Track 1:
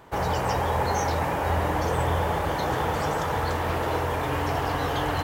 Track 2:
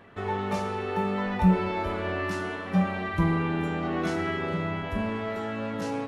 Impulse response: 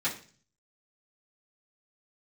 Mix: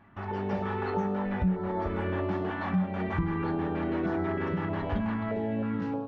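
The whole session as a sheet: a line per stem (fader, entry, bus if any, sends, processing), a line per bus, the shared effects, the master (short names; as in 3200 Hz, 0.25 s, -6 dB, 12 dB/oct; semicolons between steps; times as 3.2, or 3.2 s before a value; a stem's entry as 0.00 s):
-10.0 dB, 0.00 s, send -5 dB, HPF 1200 Hz 12 dB/oct; step gate "x.x.x.x." 184 bpm
-1.5 dB, 0.00 s, send -19.5 dB, stepped notch 3.2 Hz 480–2600 Hz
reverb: on, RT60 0.40 s, pre-delay 3 ms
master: AGC gain up to 11.5 dB; tape spacing loss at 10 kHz 43 dB; compressor 3:1, threshold -29 dBFS, peak gain reduction 15.5 dB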